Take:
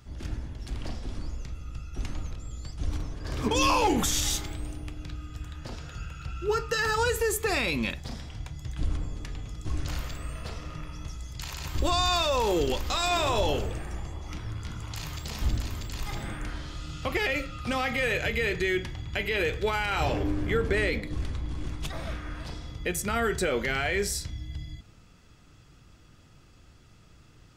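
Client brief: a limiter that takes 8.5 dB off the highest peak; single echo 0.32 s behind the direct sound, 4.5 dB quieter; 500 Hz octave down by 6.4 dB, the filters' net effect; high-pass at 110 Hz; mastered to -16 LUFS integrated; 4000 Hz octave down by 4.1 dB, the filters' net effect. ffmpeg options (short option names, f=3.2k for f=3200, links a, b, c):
-af "highpass=110,equalizer=f=500:t=o:g=-8,equalizer=f=4k:t=o:g=-5,alimiter=level_in=1.5dB:limit=-24dB:level=0:latency=1,volume=-1.5dB,aecho=1:1:320:0.596,volume=19.5dB"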